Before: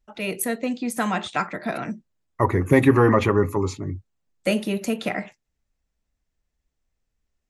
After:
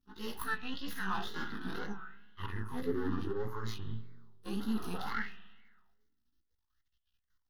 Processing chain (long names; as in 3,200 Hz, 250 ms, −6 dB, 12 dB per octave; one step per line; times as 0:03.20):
every overlapping window played backwards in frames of 39 ms
healed spectral selection 0:04.63–0:05.12, 380–1,500 Hz after
high-shelf EQ 2,200 Hz +12 dB
harmonic and percussive parts rebalanced percussive −14 dB
reversed playback
downward compressor 6 to 1, threshold −33 dBFS, peak gain reduction 16.5 dB
reversed playback
half-wave rectification
phaser with its sweep stopped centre 2,300 Hz, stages 6
spring reverb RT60 1.3 s, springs 32/54 ms, chirp 75 ms, DRR 11 dB
tape wow and flutter 96 cents
auto-filter bell 0.64 Hz 260–3,100 Hz +16 dB
level +1 dB